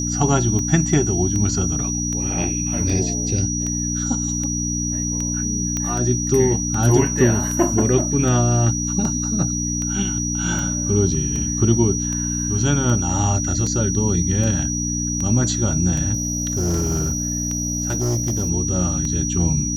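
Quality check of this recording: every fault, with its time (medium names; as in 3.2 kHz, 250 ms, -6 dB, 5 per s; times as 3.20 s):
hum 60 Hz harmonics 5 -25 dBFS
tick 78 rpm -15 dBFS
whine 5.8 kHz -24 dBFS
5.77 s: pop -10 dBFS
16.13–18.50 s: clipped -17 dBFS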